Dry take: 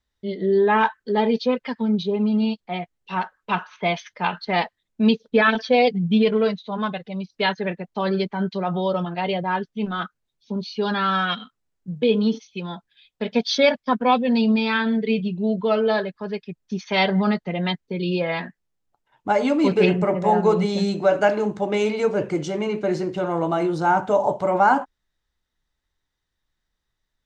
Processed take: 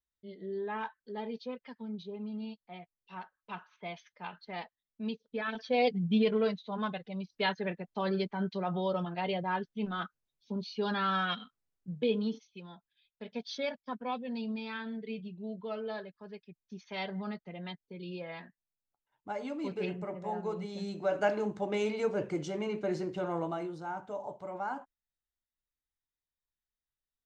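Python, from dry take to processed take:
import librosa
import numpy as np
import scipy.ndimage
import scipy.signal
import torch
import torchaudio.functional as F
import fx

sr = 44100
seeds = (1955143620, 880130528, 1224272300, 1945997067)

y = fx.gain(x, sr, db=fx.line((5.44, -19.0), (5.86, -9.0), (11.95, -9.0), (12.7, -18.0), (20.7, -18.0), (21.28, -10.0), (23.36, -10.0), (23.85, -20.0)))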